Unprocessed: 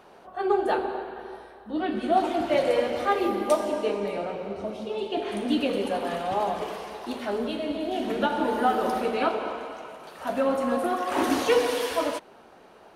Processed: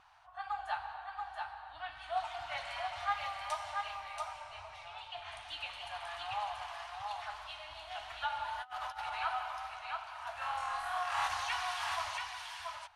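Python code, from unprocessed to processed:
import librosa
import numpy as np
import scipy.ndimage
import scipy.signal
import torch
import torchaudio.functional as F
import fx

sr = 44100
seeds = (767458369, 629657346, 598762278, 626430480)

y = scipy.signal.sosfilt(scipy.signal.cheby2(4, 40, [170.0, 510.0], 'bandstop', fs=sr, output='sos'), x)
y = fx.room_flutter(y, sr, wall_m=4.2, rt60_s=0.88, at=(10.4, 11.27), fade=0.02)
y = fx.vibrato(y, sr, rate_hz=2.6, depth_cents=28.0)
y = scipy.signal.sosfilt(scipy.signal.butter(2, 7500.0, 'lowpass', fs=sr, output='sos'), y)
y = y + 10.0 ** (-4.0 / 20.0) * np.pad(y, (int(682 * sr / 1000.0), 0))[:len(y)]
y = fx.over_compress(y, sr, threshold_db=-33.0, ratio=-0.5, at=(8.6, 9.15), fade=0.02)
y = F.gain(torch.from_numpy(y), -7.5).numpy()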